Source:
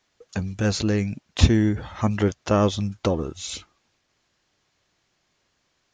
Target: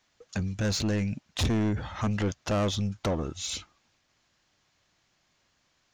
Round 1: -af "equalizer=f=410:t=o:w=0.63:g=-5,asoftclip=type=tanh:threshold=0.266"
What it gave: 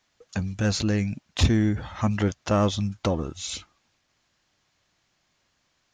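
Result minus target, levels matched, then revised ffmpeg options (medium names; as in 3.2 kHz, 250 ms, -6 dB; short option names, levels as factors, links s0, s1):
saturation: distortion -8 dB
-af "equalizer=f=410:t=o:w=0.63:g=-5,asoftclip=type=tanh:threshold=0.075"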